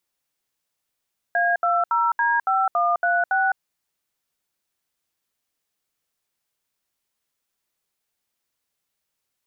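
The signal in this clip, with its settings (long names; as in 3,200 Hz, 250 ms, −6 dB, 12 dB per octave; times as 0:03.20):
touch tones "A20D5136", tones 209 ms, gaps 71 ms, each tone −20 dBFS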